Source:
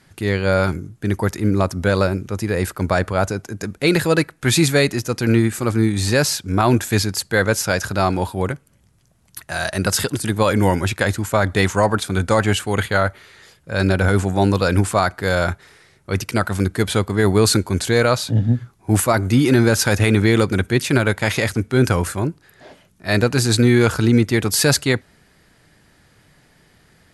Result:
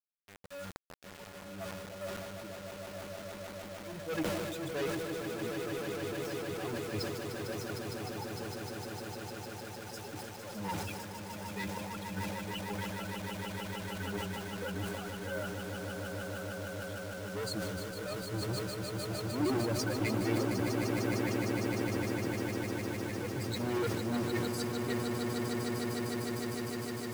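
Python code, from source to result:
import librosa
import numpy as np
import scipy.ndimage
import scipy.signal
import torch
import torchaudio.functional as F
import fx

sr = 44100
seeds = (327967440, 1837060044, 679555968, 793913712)

y = fx.bin_expand(x, sr, power=3.0)
y = fx.lowpass(y, sr, hz=1200.0, slope=6)
y = np.clip(10.0 ** (28.5 / 20.0) * y, -1.0, 1.0) / 10.0 ** (28.5 / 20.0)
y = fx.cheby_harmonics(y, sr, harmonics=(3, 5, 7, 8), levels_db=(-24, -10, -12, -29), full_scale_db=-8.0)
y = fx.low_shelf(y, sr, hz=120.0, db=-10.5)
y = fx.auto_swell(y, sr, attack_ms=378.0)
y = fx.echo_swell(y, sr, ms=152, loudest=8, wet_db=-7.0)
y = fx.quant_dither(y, sr, seeds[0], bits=8, dither='none')
y = fx.dynamic_eq(y, sr, hz=310.0, q=5.9, threshold_db=-58.0, ratio=4.0, max_db=6)
y = fx.sustainer(y, sr, db_per_s=25.0)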